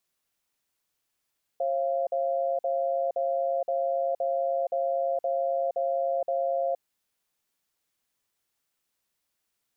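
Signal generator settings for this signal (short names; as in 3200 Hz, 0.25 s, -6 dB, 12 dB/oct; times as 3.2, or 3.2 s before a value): cadence 540 Hz, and 689 Hz, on 0.47 s, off 0.05 s, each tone -27 dBFS 5.19 s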